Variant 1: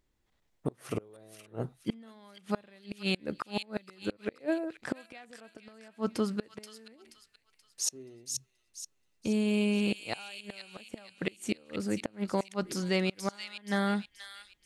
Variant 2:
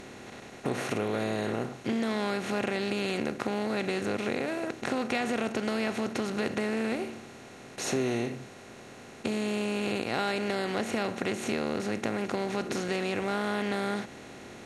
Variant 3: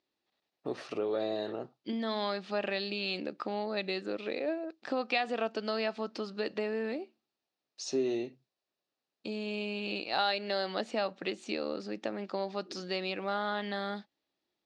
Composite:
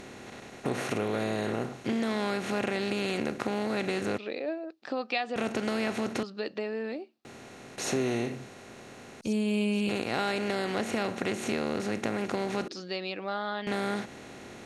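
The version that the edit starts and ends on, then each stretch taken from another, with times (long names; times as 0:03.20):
2
0:04.18–0:05.36: punch in from 3
0:06.23–0:07.25: punch in from 3
0:09.21–0:09.89: punch in from 1
0:12.68–0:13.67: punch in from 3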